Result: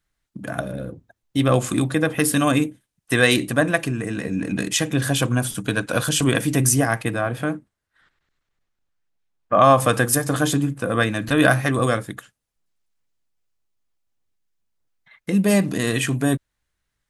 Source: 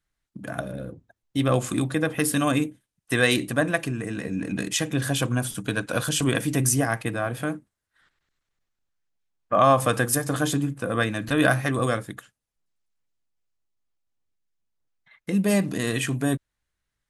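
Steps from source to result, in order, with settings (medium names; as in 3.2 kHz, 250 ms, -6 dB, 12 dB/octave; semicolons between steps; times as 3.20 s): 7.21–9.62 s: treble shelf 5.3 kHz -7.5 dB; trim +4 dB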